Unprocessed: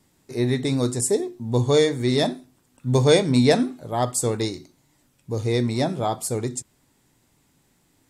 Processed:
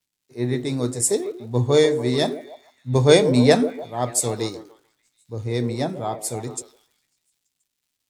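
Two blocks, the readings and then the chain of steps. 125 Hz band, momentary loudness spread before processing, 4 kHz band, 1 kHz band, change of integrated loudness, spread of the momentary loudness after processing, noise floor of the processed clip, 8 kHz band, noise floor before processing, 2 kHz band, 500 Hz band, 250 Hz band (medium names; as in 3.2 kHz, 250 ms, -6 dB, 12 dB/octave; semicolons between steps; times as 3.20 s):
-0.5 dB, 13 LU, +0.5 dB, 0.0 dB, +1.0 dB, 17 LU, -79 dBFS, +2.5 dB, -65 dBFS, +1.0 dB, +2.0 dB, 0.0 dB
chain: crackle 300 per s -41 dBFS; repeats whose band climbs or falls 147 ms, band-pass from 430 Hz, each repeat 0.7 oct, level -6 dB; three bands expanded up and down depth 70%; trim -1.5 dB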